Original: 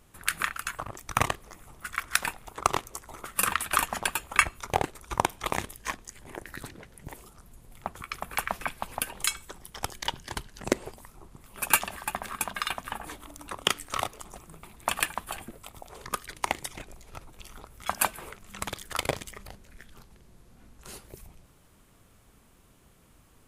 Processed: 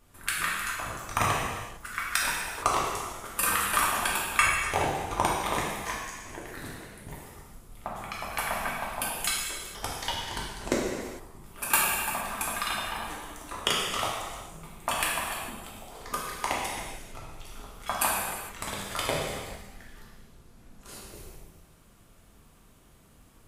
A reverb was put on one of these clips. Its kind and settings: gated-style reverb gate 480 ms falling, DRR -5 dB; trim -4.5 dB

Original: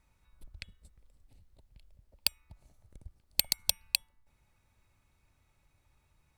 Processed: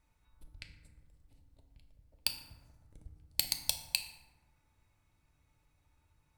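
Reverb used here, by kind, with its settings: FDN reverb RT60 1.3 s, low-frequency decay 1.55×, high-frequency decay 0.45×, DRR 4.5 dB; trim -4 dB

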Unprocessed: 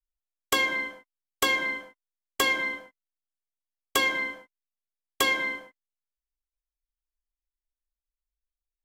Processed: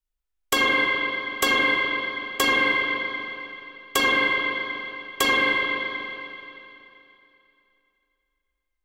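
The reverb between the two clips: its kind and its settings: spring tank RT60 2.9 s, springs 38/42 ms, chirp 40 ms, DRR -4 dB; trim +2 dB

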